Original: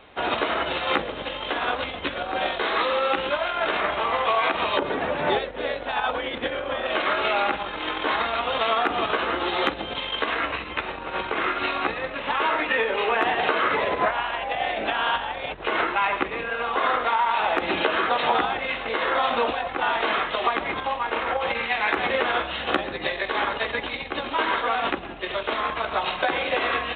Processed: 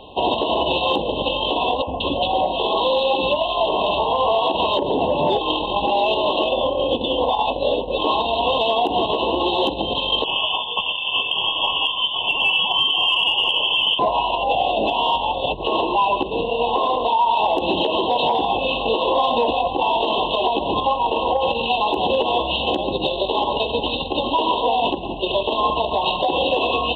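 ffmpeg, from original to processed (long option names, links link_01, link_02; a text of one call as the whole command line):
ffmpeg -i in.wav -filter_complex "[0:a]asettb=1/sr,asplit=3[link_01][link_02][link_03];[link_01]atrim=end=1.824[link_04];[link_02]atrim=start=1.82:end=4.35,asetpts=PTS-STARTPTS,afade=type=in:duration=0.004:curve=qsin,afade=type=out:start_time=2.526:duration=0.004:curve=qsin,acrossover=split=350|1900[link_05][link_06][link_07];[link_05]adelay=50[link_08];[link_07]adelay=180[link_09];[link_08][link_06][link_09]amix=inputs=3:normalize=0,atrim=end_sample=111573[link_10];[link_03]atrim=start=4.346[link_11];[link_04][link_10]acrossfade=duration=0.004:curve1=hsin:curve2=qsin[link_12];[link_12][link_11]acrossfade=duration=0.004:curve1=qsin:curve2=hsin,asettb=1/sr,asplit=3[link_13][link_14][link_15];[link_13]atrim=end=10.244[link_16];[link_14]atrim=start=10.24:end=13.99,asetpts=PTS-STARTPTS,afade=type=in:duration=0.004:curve=qsin,afade=type=out:start_time=3.746:duration=0.004:curve=qsin,lowpass=frequency=3100:width_type=q:width=0.5098,lowpass=frequency=3100:width_type=q:width=0.6013,lowpass=frequency=3100:width_type=q:width=0.9,lowpass=frequency=3100:width_type=q:width=2.563,afreqshift=-3600[link_17];[link_15]atrim=start=13.986[link_18];[link_16][link_17]acrossfade=duration=0.004:curve1=hsin:curve2=qsin[link_19];[link_19][link_18]acrossfade=duration=0.004:curve1=qsin:curve2=hsin,asplit=3[link_20][link_21][link_22];[link_20]atrim=end=5.412[link_23];[link_21]atrim=start=5.408:end=7.982,asetpts=PTS-STARTPTS,areverse[link_24];[link_22]atrim=start=7.978[link_25];[link_23][link_24]acrossfade=duration=0.004:curve1=hsin:curve2=hsin[link_26];[link_26][link_25]acrossfade=duration=0.004:curve1=hsin:curve2=hsin,afftfilt=real='re*(1-between(b*sr/4096,1100,2600))':imag='im*(1-between(b*sr/4096,1100,2600))':win_size=4096:overlap=0.75,acontrast=81,alimiter=limit=-13.5dB:level=0:latency=1:release=155,volume=3.5dB" out.wav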